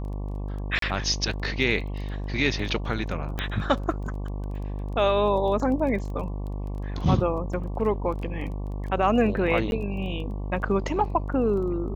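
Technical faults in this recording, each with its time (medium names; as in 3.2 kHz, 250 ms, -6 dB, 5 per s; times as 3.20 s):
buzz 50 Hz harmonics 23 -31 dBFS
crackle 15 per s -35 dBFS
0.79–0.82 s: dropout 33 ms
3.39 s: pop -14 dBFS
7.53 s: dropout 4.8 ms
9.71–9.72 s: dropout 11 ms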